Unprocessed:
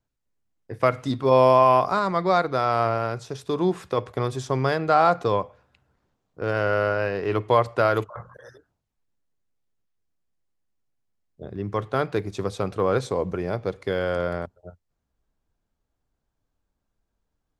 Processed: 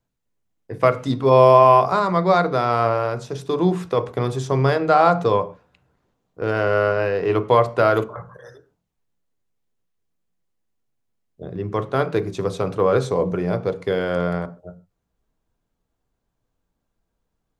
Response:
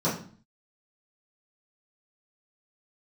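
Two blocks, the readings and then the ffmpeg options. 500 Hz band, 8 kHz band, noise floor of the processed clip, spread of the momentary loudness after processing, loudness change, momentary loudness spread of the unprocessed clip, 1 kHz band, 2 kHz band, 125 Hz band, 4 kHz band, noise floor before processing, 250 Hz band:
+4.5 dB, can't be measured, −77 dBFS, 13 LU, +4.0 dB, 12 LU, +3.5 dB, +2.5 dB, +5.0 dB, +2.5 dB, −80 dBFS, +4.5 dB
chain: -filter_complex "[0:a]asplit=2[link_01][link_02];[1:a]atrim=start_sample=2205,afade=type=out:start_time=0.2:duration=0.01,atrim=end_sample=9261[link_03];[link_02][link_03]afir=irnorm=-1:irlink=0,volume=-22dB[link_04];[link_01][link_04]amix=inputs=2:normalize=0,volume=2.5dB"

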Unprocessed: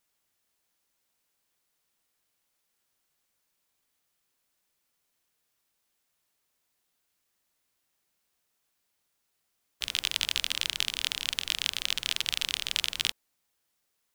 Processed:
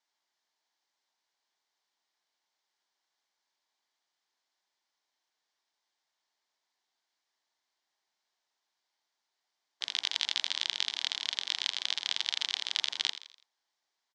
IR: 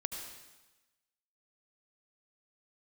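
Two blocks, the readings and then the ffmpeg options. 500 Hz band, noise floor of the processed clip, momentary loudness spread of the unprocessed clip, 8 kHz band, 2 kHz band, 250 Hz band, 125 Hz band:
−5.0 dB, −85 dBFS, 3 LU, −6.5 dB, −4.5 dB, below −10 dB, below −20 dB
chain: -filter_complex "[0:a]highpass=470,equalizer=frequency=500:width_type=q:width=4:gain=-9,equalizer=frequency=880:width_type=q:width=4:gain=4,equalizer=frequency=1300:width_type=q:width=4:gain=-6,equalizer=frequency=2600:width_type=q:width=4:gain=-8,lowpass=frequency=5800:width=0.5412,lowpass=frequency=5800:width=1.3066,asplit=5[link_01][link_02][link_03][link_04][link_05];[link_02]adelay=83,afreqshift=58,volume=-13dB[link_06];[link_03]adelay=166,afreqshift=116,volume=-20.3dB[link_07];[link_04]adelay=249,afreqshift=174,volume=-27.7dB[link_08];[link_05]adelay=332,afreqshift=232,volume=-35dB[link_09];[link_01][link_06][link_07][link_08][link_09]amix=inputs=5:normalize=0"

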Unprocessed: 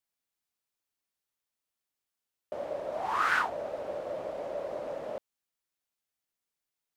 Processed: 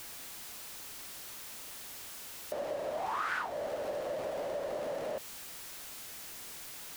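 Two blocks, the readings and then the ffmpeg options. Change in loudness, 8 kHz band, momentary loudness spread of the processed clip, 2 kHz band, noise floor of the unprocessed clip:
−5.5 dB, +13.0 dB, 8 LU, −6.5 dB, below −85 dBFS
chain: -af "aeval=exprs='val(0)+0.5*0.0119*sgn(val(0))':channel_layout=same,acompressor=threshold=-34dB:ratio=3"

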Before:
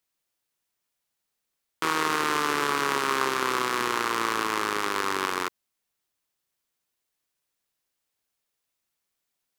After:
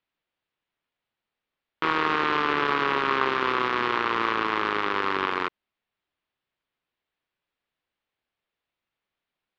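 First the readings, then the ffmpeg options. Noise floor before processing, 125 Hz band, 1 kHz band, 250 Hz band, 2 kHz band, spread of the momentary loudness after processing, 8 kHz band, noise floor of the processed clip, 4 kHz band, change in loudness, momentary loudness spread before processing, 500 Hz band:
−82 dBFS, +2.0 dB, +2.0 dB, +2.0 dB, +2.0 dB, 3 LU, below −20 dB, below −85 dBFS, −1.0 dB, +1.5 dB, 3 LU, +2.0 dB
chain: -af "acrusher=bits=2:mode=log:mix=0:aa=0.000001,lowpass=frequency=3500:width=0.5412,lowpass=frequency=3500:width=1.3066,volume=1.5dB"

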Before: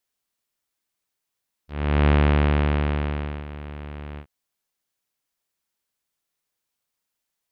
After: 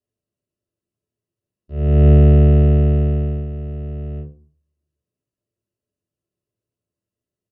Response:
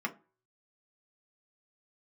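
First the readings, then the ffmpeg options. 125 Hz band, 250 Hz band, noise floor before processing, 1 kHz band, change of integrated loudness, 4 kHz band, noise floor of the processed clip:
+9.5 dB, +7.0 dB, −82 dBFS, −7.0 dB, +8.0 dB, can't be measured, below −85 dBFS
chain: -filter_complex "[0:a]firequalizer=gain_entry='entry(210,0);entry(330,3);entry(870,-22);entry(2200,-13)':delay=0.05:min_phase=1[link_01];[1:a]atrim=start_sample=2205,asetrate=22491,aresample=44100[link_02];[link_01][link_02]afir=irnorm=-1:irlink=0"

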